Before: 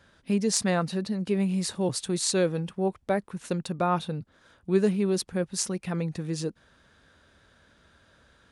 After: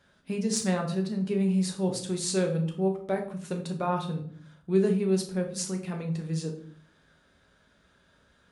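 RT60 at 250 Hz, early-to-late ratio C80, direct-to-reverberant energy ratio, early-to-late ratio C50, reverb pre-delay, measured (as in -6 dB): 0.75 s, 13.5 dB, 2.0 dB, 9.0 dB, 5 ms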